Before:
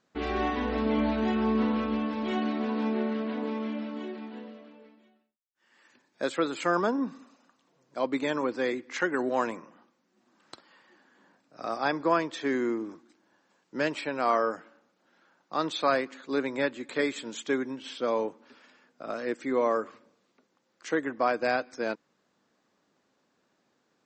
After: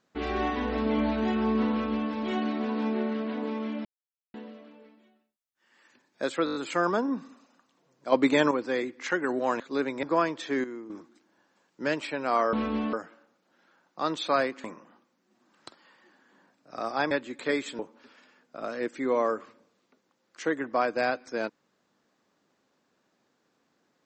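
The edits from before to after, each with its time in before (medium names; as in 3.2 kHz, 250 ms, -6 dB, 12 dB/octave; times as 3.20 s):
1.71–2.11 s: copy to 14.47 s
3.85–4.34 s: mute
6.45 s: stutter 0.02 s, 6 plays
8.02–8.41 s: gain +7 dB
9.50–11.97 s: swap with 16.18–16.61 s
12.58–12.84 s: gain -10.5 dB
17.29–18.25 s: delete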